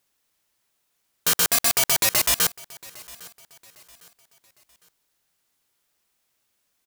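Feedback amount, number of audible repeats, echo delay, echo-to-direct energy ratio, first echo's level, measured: 37%, 2, 806 ms, −21.5 dB, −22.0 dB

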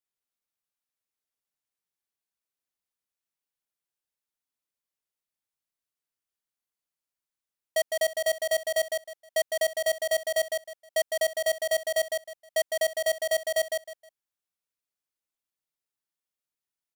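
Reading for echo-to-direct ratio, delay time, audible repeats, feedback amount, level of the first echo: −4.0 dB, 157 ms, 3, 24%, −4.5 dB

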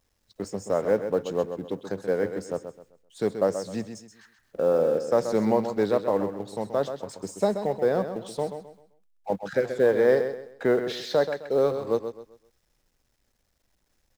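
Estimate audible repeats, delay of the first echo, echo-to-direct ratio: 3, 130 ms, −8.5 dB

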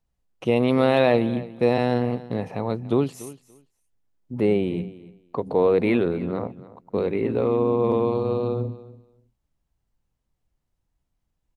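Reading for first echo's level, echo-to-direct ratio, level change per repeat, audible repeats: −18.0 dB, −18.0 dB, −16.0 dB, 2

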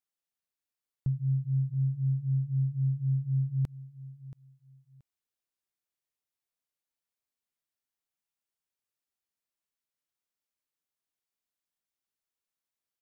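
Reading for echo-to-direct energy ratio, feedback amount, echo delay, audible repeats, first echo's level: −16.5 dB, 22%, 678 ms, 2, −16.5 dB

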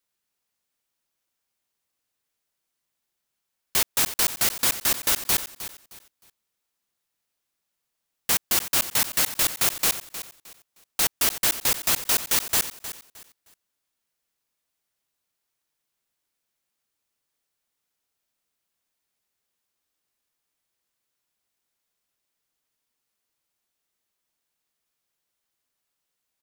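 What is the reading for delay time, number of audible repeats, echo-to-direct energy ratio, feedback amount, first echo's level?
310 ms, 2, −12.5 dB, 27%, −13.0 dB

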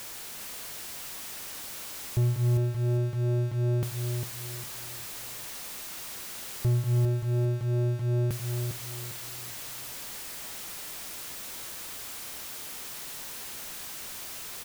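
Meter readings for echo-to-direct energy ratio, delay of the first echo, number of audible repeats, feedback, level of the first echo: −5.5 dB, 403 ms, 4, 33%, −6.0 dB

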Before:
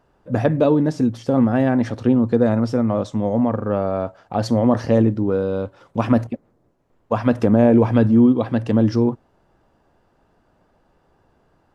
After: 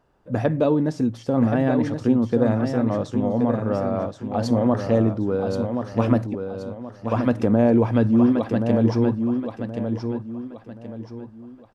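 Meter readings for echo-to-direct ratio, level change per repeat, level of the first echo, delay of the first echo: −6.0 dB, −9.5 dB, −6.5 dB, 1,076 ms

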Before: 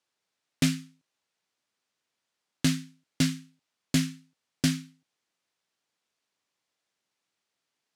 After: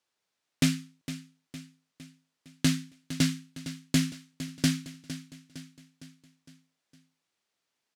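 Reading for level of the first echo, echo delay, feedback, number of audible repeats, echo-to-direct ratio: −13.0 dB, 459 ms, 52%, 4, −11.5 dB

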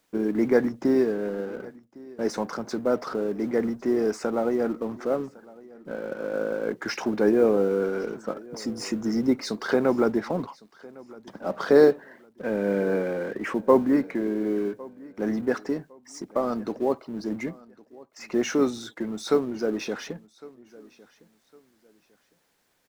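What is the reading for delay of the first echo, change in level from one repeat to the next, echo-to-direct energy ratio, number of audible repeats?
1,107 ms, −11.0 dB, −22.0 dB, 2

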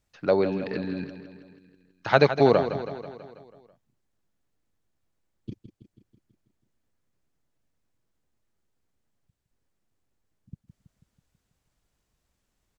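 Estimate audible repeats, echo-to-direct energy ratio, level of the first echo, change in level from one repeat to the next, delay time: 6, −9.0 dB, −11.0 dB, −4.5 dB, 163 ms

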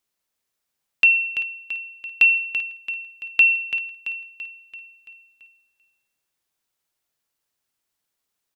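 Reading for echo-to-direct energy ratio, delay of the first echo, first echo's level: −7.5 dB, 336 ms, −9.0 dB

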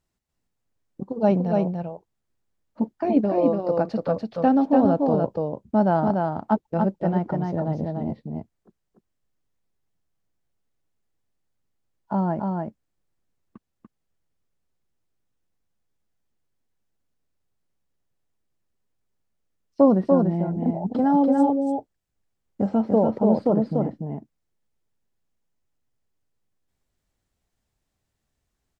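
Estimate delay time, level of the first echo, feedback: 291 ms, −3.5 dB, repeats not evenly spaced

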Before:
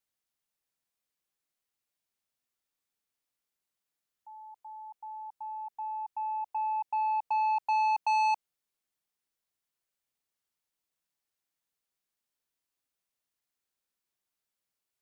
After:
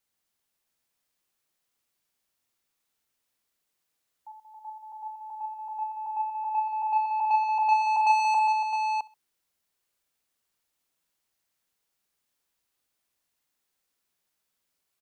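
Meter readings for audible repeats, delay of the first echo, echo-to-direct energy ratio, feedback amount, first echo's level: 6, 49 ms, −0.5 dB, repeats not evenly spaced, −5.5 dB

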